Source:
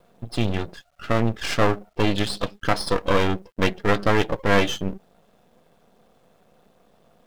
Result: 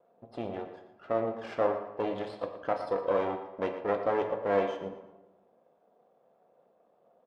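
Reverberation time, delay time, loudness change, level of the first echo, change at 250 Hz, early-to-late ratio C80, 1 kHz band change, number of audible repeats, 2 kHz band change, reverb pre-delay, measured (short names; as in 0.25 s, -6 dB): 1.1 s, 0.117 s, -8.5 dB, -12.5 dB, -13.0 dB, 8.5 dB, -7.5 dB, 2, -16.0 dB, 13 ms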